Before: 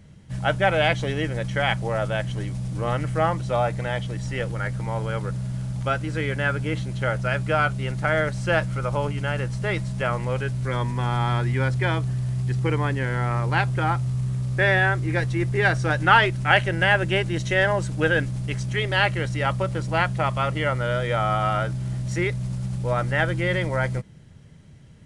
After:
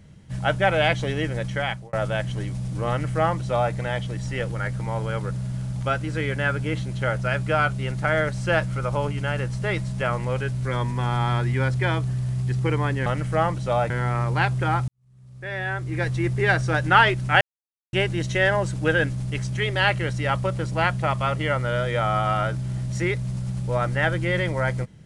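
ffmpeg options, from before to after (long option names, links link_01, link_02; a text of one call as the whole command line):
ffmpeg -i in.wav -filter_complex "[0:a]asplit=7[link_01][link_02][link_03][link_04][link_05][link_06][link_07];[link_01]atrim=end=1.93,asetpts=PTS-STARTPTS,afade=type=out:start_time=1.32:duration=0.61:curve=qsin[link_08];[link_02]atrim=start=1.93:end=13.062,asetpts=PTS-STARTPTS,afade=type=in:duration=0.004:curve=hsin[link_09];[link_03]atrim=start=2.888:end=3.732[link_10];[link_04]atrim=start=13.058:end=14.04,asetpts=PTS-STARTPTS,afade=type=out:start_time=0.978:duration=0.004:curve=hsin[link_11];[link_05]atrim=start=14.04:end=16.57,asetpts=PTS-STARTPTS,afade=type=in:duration=1.26:curve=qua,afade=type=out:start_time=2.526:duration=0.004:curve=hsin[link_12];[link_06]atrim=start=16.57:end=17.09,asetpts=PTS-STARTPTS,volume=0[link_13];[link_07]atrim=start=17.09,asetpts=PTS-STARTPTS,afade=type=in:duration=0.004:curve=hsin[link_14];[link_08][link_09]concat=n=2:v=0:a=1[link_15];[link_15][link_10]acrossfade=duration=0.004:curve1=hsin:curve2=hsin[link_16];[link_11][link_12][link_13][link_14]concat=n=4:v=0:a=1[link_17];[link_16][link_17]acrossfade=duration=0.004:curve1=hsin:curve2=hsin" out.wav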